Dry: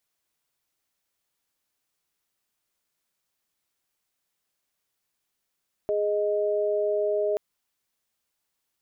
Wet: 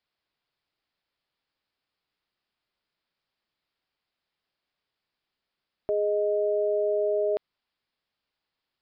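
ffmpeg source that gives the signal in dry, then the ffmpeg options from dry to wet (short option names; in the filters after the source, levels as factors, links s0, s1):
-f lavfi -i "aevalsrc='0.0562*(sin(2*PI*415.3*t)+sin(2*PI*622.25*t))':d=1.48:s=44100"
-af "aresample=11025,aresample=44100"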